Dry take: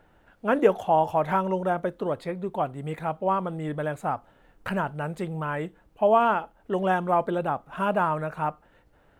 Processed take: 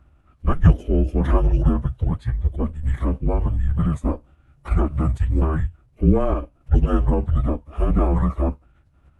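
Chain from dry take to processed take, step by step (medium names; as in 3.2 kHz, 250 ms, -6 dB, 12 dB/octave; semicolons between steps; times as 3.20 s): frequency shift -280 Hz; resonant low shelf 170 Hz +10.5 dB, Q 3; formant-preserving pitch shift -11 st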